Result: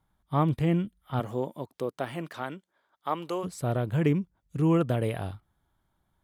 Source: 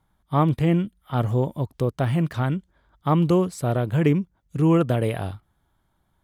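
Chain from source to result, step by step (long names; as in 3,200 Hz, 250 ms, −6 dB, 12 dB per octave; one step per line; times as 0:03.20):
0:01.19–0:03.43: high-pass filter 210 Hz → 570 Hz 12 dB per octave
level −5 dB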